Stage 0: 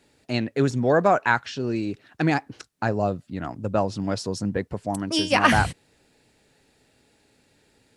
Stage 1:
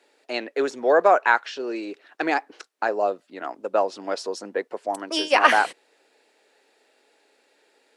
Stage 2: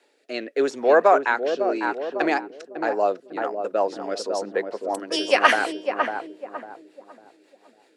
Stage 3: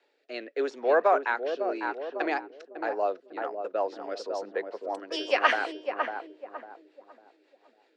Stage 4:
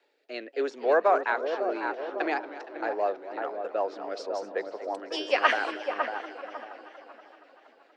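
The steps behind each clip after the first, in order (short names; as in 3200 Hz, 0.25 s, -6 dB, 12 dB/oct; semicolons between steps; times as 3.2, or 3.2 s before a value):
HPF 380 Hz 24 dB/oct; high shelf 4900 Hz -8.5 dB; gain +3 dB
darkening echo 0.551 s, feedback 40%, low-pass 840 Hz, level -3.5 dB; rotary speaker horn 0.85 Hz, later 5.5 Hz, at 2.82; gain +2.5 dB
three-band isolator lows -21 dB, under 250 Hz, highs -24 dB, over 5700 Hz; gain -6 dB
warbling echo 0.236 s, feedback 70%, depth 184 cents, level -15 dB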